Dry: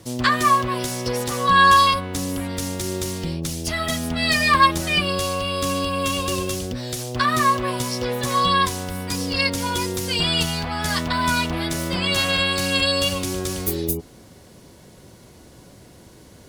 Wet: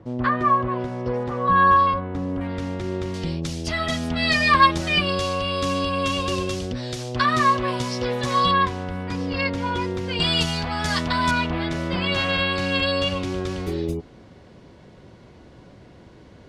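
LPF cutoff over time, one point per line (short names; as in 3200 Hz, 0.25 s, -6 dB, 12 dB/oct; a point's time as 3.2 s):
1300 Hz
from 2.41 s 2200 Hz
from 3.14 s 5100 Hz
from 8.51 s 2400 Hz
from 10.2 s 6500 Hz
from 11.31 s 3100 Hz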